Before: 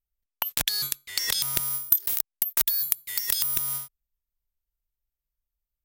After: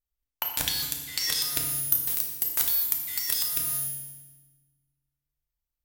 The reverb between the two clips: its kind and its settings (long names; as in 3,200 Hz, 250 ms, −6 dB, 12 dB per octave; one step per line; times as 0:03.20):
feedback delay network reverb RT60 1.2 s, low-frequency decay 1.5×, high-frequency decay 0.95×, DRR 0.5 dB
level −3.5 dB